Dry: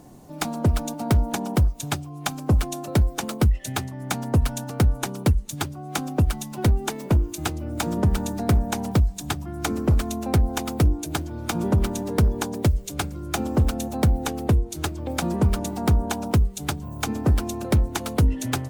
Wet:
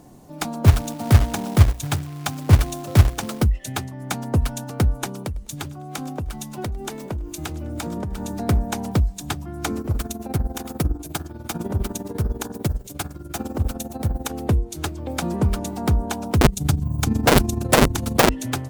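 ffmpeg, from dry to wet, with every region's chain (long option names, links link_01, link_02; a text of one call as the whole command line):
ffmpeg -i in.wav -filter_complex "[0:a]asettb=1/sr,asplit=3[link_01][link_02][link_03];[link_01]atrim=end=0.644[link_04];[link_02]atrim=start=0.64:end=3.43,asetpts=PTS-STARTPTS,afade=type=in:duration=0.004:curve=qsin,afade=type=out:start_time=2.786:duration=0.004:curve=qsin,equalizer=frequency=100:width_type=o:width=0.92:gain=10.5,bandreject=frequency=60:width_type=h:width=6,bandreject=frequency=120:width_type=h:width=6,bandreject=frequency=180:width_type=h:width=6,bandreject=frequency=240:width_type=h:width=6,bandreject=frequency=300:width_type=h:width=6,bandreject=frequency=360:width_type=h:width=6,bandreject=frequency=420:width_type=h:width=6,acrusher=bits=3:mode=log:mix=0:aa=0.000001[link_05];[link_03]atrim=start=3.426[link_06];[link_04][link_05]acrossfade=duration=0.004:curve1=hsin:curve2=qsin[link_07];[link_07][link_06]acrossfade=duration=0.004:curve1=qsin:curve2=hsin,asettb=1/sr,asplit=3[link_08][link_09][link_10];[link_08]atrim=end=5.144[link_11];[link_09]atrim=start=5.14:end=8.35,asetpts=PTS-STARTPTS,afade=type=in:duration=0.004:curve=qsin,afade=type=out:start_time=3.206:duration=0.004:curve=qsin,acompressor=threshold=-24dB:ratio=12:attack=3.2:release=140:knee=1:detection=peak,aecho=1:1:102|204|306:0.0708|0.0333|0.0156,atrim=end_sample=141561[link_12];[link_10]atrim=start=8.346[link_13];[link_11][link_12]acrossfade=duration=0.004:curve1=hsin:curve2=qsin[link_14];[link_14][link_13]acrossfade=duration=0.004:curve1=qsin:curve2=hsin,asettb=1/sr,asplit=3[link_15][link_16][link_17];[link_15]atrim=end=9.814[link_18];[link_16]atrim=start=9.81:end=14.32,asetpts=PTS-STARTPTS,afade=type=in:duration=0.004:curve=qsin,afade=type=out:start_time=4.506:duration=0.004:curve=qsin,highshelf=frequency=10000:gain=8.5,bandreject=frequency=61.5:width_type=h:width=4,bandreject=frequency=123:width_type=h:width=4,bandreject=frequency=184.5:width_type=h:width=4,bandreject=frequency=246:width_type=h:width=4,bandreject=frequency=307.5:width_type=h:width=4,bandreject=frequency=369:width_type=h:width=4,bandreject=frequency=430.5:width_type=h:width=4,bandreject=frequency=492:width_type=h:width=4,bandreject=frequency=553.5:width_type=h:width=4,bandreject=frequency=615:width_type=h:width=4,bandreject=frequency=676.5:width_type=h:width=4,bandreject=frequency=738:width_type=h:width=4,bandreject=frequency=799.5:width_type=h:width=4,bandreject=frequency=861:width_type=h:width=4,bandreject=frequency=922.5:width_type=h:width=4,bandreject=frequency=984:width_type=h:width=4,bandreject=frequency=1045.5:width_type=h:width=4,bandreject=frequency=1107:width_type=h:width=4,bandreject=frequency=1168.5:width_type=h:width=4,bandreject=frequency=1230:width_type=h:width=4,bandreject=frequency=1291.5:width_type=h:width=4,bandreject=frequency=1353:width_type=h:width=4,bandreject=frequency=1414.5:width_type=h:width=4,bandreject=frequency=1476:width_type=h:width=4,bandreject=frequency=1537.5:width_type=h:width=4,bandreject=frequency=1599:width_type=h:width=4,bandreject=frequency=1660.5:width_type=h:width=4,bandreject=frequency=1722:width_type=h:width=4,bandreject=frequency=1783.5:width_type=h:width=4,tremolo=f=20:d=0.74[link_19];[link_17]atrim=start=14.316[link_20];[link_18][link_19]acrossfade=duration=0.004:curve1=hsin:curve2=qsin[link_21];[link_21][link_20]acrossfade=duration=0.004:curve1=qsin:curve2=hsin,asettb=1/sr,asplit=3[link_22][link_23][link_24];[link_22]atrim=end=16.414[link_25];[link_23]atrim=start=16.41:end=18.29,asetpts=PTS-STARTPTS,afade=type=in:duration=0.004:curve=qsin,afade=type=out:start_time=1.876:duration=0.004:curve=qsin,bass=frequency=250:gain=15,treble=frequency=4000:gain=5,aeval=exprs='(mod(1.78*val(0)+1,2)-1)/1.78':channel_layout=same,tremolo=f=24:d=0.621[link_26];[link_24]atrim=start=18.286[link_27];[link_25][link_26]acrossfade=duration=0.004:curve1=hsin:curve2=qsin[link_28];[link_28][link_27]acrossfade=duration=0.004:curve1=qsin:curve2=hsin" out.wav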